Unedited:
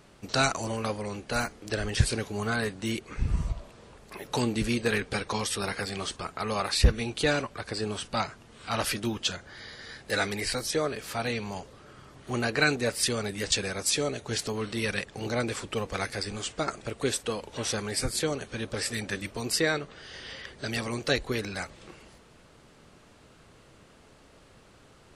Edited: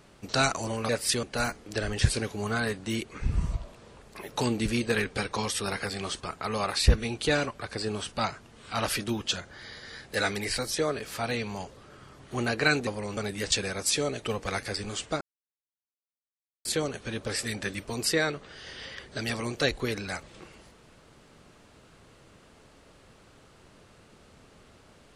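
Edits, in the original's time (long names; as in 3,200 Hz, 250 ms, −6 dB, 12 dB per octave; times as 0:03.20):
0:00.89–0:01.19: swap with 0:12.83–0:13.17
0:14.22–0:15.69: remove
0:16.68–0:18.12: silence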